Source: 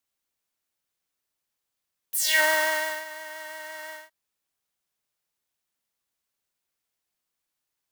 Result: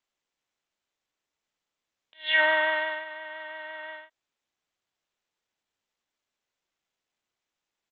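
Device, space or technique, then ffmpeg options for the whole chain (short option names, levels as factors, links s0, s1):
Bluetooth headset: -af "highpass=f=230:w=0.5412,highpass=f=230:w=1.3066,aresample=8000,aresample=44100" -ar 16000 -c:a sbc -b:a 64k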